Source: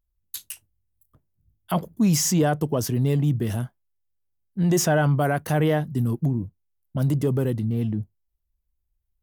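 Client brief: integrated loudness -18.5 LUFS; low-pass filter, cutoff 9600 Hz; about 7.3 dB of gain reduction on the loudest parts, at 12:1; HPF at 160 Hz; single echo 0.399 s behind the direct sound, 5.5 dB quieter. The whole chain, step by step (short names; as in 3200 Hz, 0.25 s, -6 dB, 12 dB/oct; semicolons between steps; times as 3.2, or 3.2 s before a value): HPF 160 Hz; LPF 9600 Hz; compressor 12:1, threshold -24 dBFS; echo 0.399 s -5.5 dB; gain +11 dB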